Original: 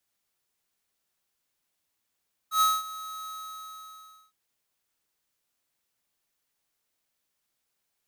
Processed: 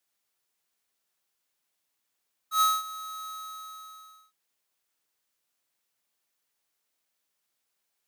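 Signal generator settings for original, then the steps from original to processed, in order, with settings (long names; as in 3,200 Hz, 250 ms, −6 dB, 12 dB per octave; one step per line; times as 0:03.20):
note with an ADSR envelope square 1,280 Hz, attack 102 ms, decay 213 ms, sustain −18 dB, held 0.76 s, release 1,050 ms −20.5 dBFS
low-shelf EQ 180 Hz −9 dB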